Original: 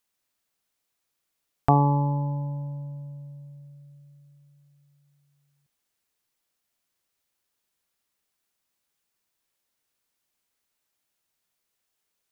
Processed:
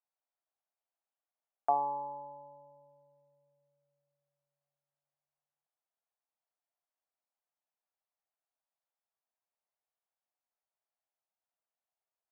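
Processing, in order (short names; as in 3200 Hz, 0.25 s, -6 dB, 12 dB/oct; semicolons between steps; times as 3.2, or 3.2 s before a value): ladder band-pass 810 Hz, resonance 50%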